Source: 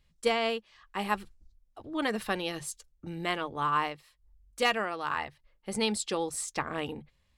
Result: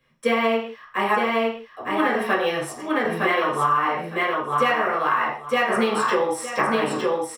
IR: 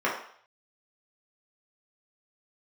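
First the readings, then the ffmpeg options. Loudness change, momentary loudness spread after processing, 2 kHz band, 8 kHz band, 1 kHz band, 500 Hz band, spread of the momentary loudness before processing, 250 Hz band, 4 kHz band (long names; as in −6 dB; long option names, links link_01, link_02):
+9.5 dB, 6 LU, +11.0 dB, +1.0 dB, +11.5 dB, +11.0 dB, 14 LU, +9.5 dB, +4.0 dB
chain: -filter_complex "[0:a]highshelf=frequency=7900:gain=4.5,aecho=1:1:910|1820|2730:0.631|0.114|0.0204,acrossover=split=180|1400|6200[link_01][link_02][link_03][link_04];[link_03]acrusher=bits=3:mode=log:mix=0:aa=0.000001[link_05];[link_01][link_02][link_05][link_04]amix=inputs=4:normalize=0[link_06];[1:a]atrim=start_sample=2205,afade=type=out:start_time=0.22:duration=0.01,atrim=end_sample=10143[link_07];[link_06][link_07]afir=irnorm=-1:irlink=0,acompressor=threshold=-17dB:ratio=6"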